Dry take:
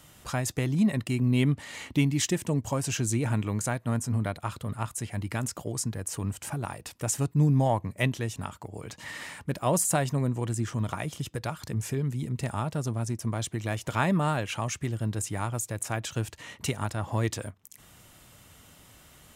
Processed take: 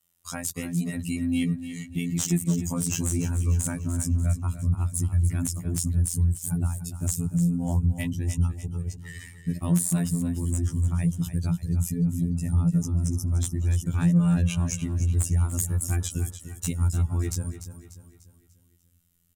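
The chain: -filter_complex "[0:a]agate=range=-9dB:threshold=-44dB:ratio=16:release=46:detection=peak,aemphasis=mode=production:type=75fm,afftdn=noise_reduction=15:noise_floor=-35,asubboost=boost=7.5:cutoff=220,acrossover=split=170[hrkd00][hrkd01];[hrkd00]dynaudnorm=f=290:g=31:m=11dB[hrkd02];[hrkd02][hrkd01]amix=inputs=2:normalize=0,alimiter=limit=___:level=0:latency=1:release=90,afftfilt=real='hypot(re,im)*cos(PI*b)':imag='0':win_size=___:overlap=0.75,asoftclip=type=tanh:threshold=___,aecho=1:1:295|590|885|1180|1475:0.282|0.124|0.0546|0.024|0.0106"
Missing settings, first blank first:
-10.5dB, 2048, -11.5dB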